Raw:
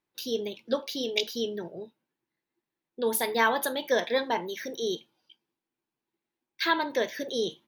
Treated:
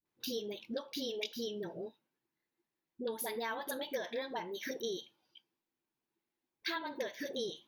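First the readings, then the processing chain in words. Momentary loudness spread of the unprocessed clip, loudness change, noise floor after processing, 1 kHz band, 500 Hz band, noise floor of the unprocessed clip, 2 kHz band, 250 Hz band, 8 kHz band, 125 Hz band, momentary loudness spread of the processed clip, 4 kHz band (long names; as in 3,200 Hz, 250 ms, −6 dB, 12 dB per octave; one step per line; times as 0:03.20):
11 LU, −10.5 dB, below −85 dBFS, −13.5 dB, −10.0 dB, below −85 dBFS, −12.5 dB, −8.5 dB, −10.0 dB, −7.5 dB, 5 LU, −9.0 dB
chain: parametric band 8,400 Hz −6.5 dB 0.22 octaves
downward compressor 6 to 1, threshold −33 dBFS, peak gain reduction 13.5 dB
all-pass dispersion highs, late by 57 ms, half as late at 440 Hz
level −2.5 dB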